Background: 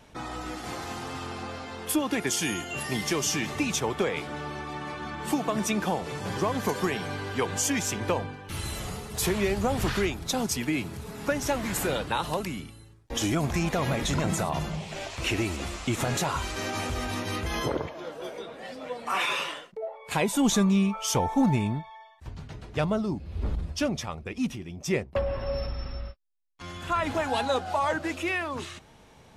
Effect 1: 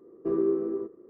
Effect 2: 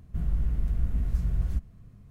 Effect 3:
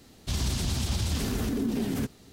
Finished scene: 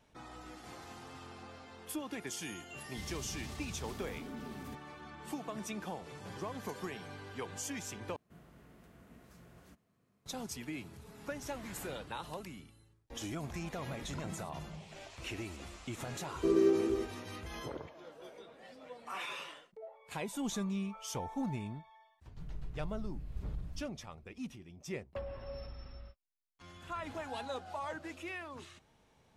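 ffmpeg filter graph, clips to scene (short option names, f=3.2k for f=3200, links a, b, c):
-filter_complex "[2:a]asplit=2[a][b];[0:a]volume=-14dB[c];[a]highpass=340[d];[b]aecho=1:1:6.6:0.85[e];[c]asplit=2[f][g];[f]atrim=end=8.164[h];[d]atrim=end=2.1,asetpts=PTS-STARTPTS,volume=-8.5dB[i];[g]atrim=start=10.256[j];[3:a]atrim=end=2.32,asetpts=PTS-STARTPTS,volume=-17.5dB,afade=t=in:d=0.004:c=hsin,afade=t=out:st=2.316:d=0.004:c=hsin,adelay=2690[k];[1:a]atrim=end=1.09,asetpts=PTS-STARTPTS,volume=-1.5dB,afade=t=in:d=0.004:c=hsin,afade=t=out:st=1.086:d=0.004:c=hsin,adelay=16180[l];[e]atrim=end=2.1,asetpts=PTS-STARTPTS,volume=-17.5dB,afade=t=in:d=0.004:c=hsin,afade=t=out:st=2.096:d=0.004:c=hsin,adelay=22220[m];[h][i]acrossfade=d=0.004:c1=hsin:c2=hsin[n];[n][j]acrossfade=d=0.004:c1=hsin:c2=hsin[o];[o][k][l][m]amix=inputs=4:normalize=0"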